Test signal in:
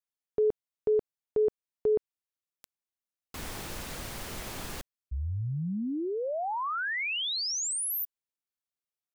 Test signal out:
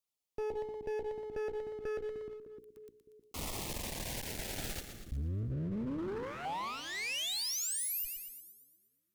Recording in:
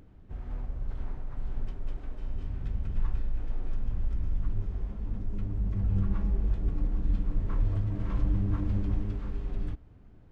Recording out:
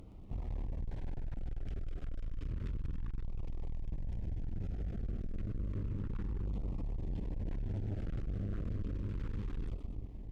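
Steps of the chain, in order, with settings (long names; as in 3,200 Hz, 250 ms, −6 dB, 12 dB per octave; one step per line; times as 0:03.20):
mains-hum notches 60/120/180/240/300/360/420/480 Hz
echo with a time of its own for lows and highs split 350 Hz, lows 305 ms, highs 119 ms, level −11 dB
brickwall limiter −28 dBFS
asymmetric clip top −51 dBFS, bottom −32.5 dBFS
auto-filter notch saw down 0.31 Hz 620–1,700 Hz
level +3.5 dB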